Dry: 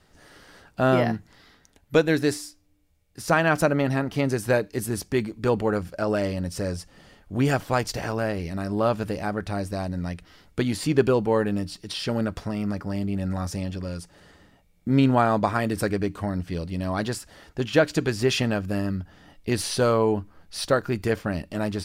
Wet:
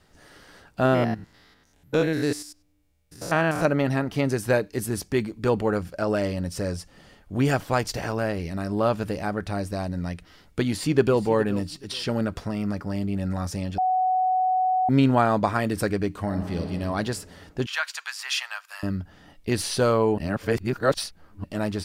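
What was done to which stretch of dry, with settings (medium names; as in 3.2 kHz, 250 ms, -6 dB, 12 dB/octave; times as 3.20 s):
0.85–3.65 s: spectrogram pixelated in time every 100 ms
10.64–11.22 s: echo throw 420 ms, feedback 25%, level -15 dB
13.78–14.89 s: bleep 744 Hz -19 dBFS
16.19–16.72 s: reverb throw, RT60 2.4 s, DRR 4 dB
17.66–18.83 s: steep high-pass 940 Hz
20.18–21.44 s: reverse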